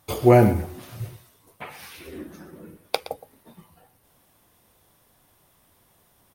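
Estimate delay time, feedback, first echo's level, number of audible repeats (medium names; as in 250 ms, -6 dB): 118 ms, no regular repeats, -15.0 dB, 1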